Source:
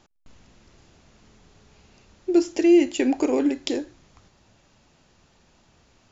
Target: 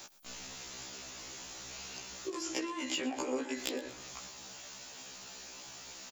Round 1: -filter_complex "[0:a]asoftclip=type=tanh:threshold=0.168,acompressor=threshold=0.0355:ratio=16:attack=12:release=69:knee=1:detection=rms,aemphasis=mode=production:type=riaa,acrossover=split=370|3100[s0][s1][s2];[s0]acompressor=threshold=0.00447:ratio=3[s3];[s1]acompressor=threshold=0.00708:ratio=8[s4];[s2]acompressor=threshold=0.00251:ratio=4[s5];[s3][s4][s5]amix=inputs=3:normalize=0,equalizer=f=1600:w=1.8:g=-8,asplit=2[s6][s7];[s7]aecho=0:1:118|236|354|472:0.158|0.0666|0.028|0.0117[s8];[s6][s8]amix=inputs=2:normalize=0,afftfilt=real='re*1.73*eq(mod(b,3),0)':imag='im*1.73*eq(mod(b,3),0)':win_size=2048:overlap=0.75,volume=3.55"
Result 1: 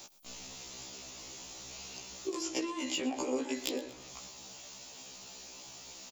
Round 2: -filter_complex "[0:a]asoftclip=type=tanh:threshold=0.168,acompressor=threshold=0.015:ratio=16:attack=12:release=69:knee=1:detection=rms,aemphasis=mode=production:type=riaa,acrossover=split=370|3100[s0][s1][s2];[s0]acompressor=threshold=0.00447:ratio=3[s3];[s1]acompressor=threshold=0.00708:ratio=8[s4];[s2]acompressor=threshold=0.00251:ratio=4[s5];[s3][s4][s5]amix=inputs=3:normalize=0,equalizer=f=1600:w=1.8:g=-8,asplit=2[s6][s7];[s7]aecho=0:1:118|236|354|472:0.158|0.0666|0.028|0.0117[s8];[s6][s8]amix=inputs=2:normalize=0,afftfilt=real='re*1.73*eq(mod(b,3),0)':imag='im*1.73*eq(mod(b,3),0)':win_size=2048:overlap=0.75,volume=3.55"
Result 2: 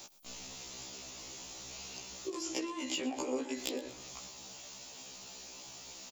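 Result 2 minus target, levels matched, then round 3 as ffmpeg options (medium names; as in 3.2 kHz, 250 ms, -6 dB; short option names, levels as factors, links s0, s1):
2 kHz band -3.0 dB
-filter_complex "[0:a]asoftclip=type=tanh:threshold=0.168,acompressor=threshold=0.015:ratio=16:attack=12:release=69:knee=1:detection=rms,aemphasis=mode=production:type=riaa,acrossover=split=370|3100[s0][s1][s2];[s0]acompressor=threshold=0.00447:ratio=3[s3];[s1]acompressor=threshold=0.00708:ratio=8[s4];[s2]acompressor=threshold=0.00251:ratio=4[s5];[s3][s4][s5]amix=inputs=3:normalize=0,asplit=2[s6][s7];[s7]aecho=0:1:118|236|354|472:0.158|0.0666|0.028|0.0117[s8];[s6][s8]amix=inputs=2:normalize=0,afftfilt=real='re*1.73*eq(mod(b,3),0)':imag='im*1.73*eq(mod(b,3),0)':win_size=2048:overlap=0.75,volume=3.55"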